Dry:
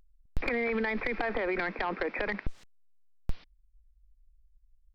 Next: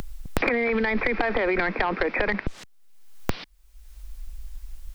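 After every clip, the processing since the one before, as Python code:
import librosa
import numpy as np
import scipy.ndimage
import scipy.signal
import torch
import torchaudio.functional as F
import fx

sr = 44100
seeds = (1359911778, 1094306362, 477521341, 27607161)

y = fx.band_squash(x, sr, depth_pct=100)
y = y * 10.0 ** (7.0 / 20.0)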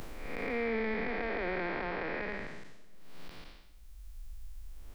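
y = fx.spec_blur(x, sr, span_ms=357.0)
y = fx.room_shoebox(y, sr, seeds[0], volume_m3=3500.0, walls='mixed', distance_m=0.33)
y = y * 10.0 ** (-6.5 / 20.0)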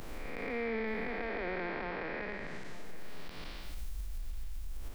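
y = fx.recorder_agc(x, sr, target_db=-30.0, rise_db_per_s=45.0, max_gain_db=30)
y = y + 10.0 ** (-16.5 / 20.0) * np.pad(y, (int(880 * sr / 1000.0), 0))[:len(y)]
y = y * 10.0 ** (-2.5 / 20.0)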